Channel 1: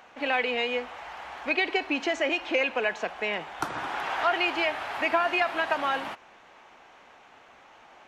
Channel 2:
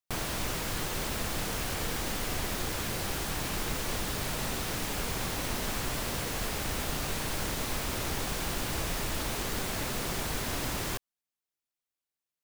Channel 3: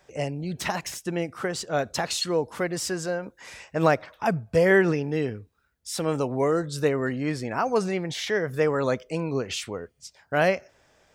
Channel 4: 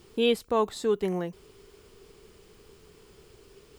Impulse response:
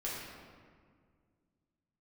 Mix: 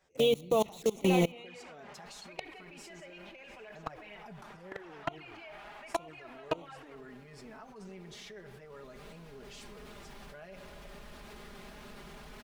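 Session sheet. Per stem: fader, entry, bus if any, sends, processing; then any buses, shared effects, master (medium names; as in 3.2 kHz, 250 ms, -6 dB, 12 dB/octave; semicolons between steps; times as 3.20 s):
-3.5 dB, 0.80 s, send -11.5 dB, vibrato 0.44 Hz 8.5 cents
8.40 s -14.5 dB -> 8.91 s -6 dB, 1.95 s, no send, treble shelf 10 kHz -10.5 dB; sliding maximum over 5 samples
-7.5 dB, 0.00 s, send -13.5 dB, none
+1.5 dB, 0.00 s, send -19.5 dB, comb 6 ms, depth 79%; bit crusher 6-bit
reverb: on, RT60 1.9 s, pre-delay 5 ms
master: level held to a coarse grid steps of 23 dB; touch-sensitive flanger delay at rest 11.9 ms, full sweep at -30 dBFS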